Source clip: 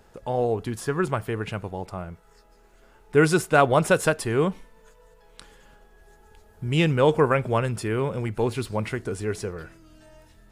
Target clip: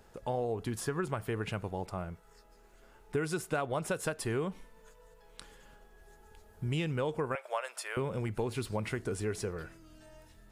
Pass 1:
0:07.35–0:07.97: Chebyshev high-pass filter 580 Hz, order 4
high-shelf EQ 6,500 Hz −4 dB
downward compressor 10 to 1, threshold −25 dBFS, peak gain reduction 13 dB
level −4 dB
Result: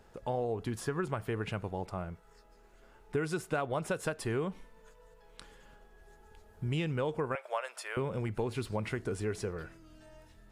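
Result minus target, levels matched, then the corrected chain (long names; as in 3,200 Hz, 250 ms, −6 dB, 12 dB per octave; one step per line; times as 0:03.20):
8,000 Hz band −4.0 dB
0:07.35–0:07.97: Chebyshev high-pass filter 580 Hz, order 4
high-shelf EQ 6,500 Hz +2.5 dB
downward compressor 10 to 1, threshold −25 dBFS, peak gain reduction 13.5 dB
level −4 dB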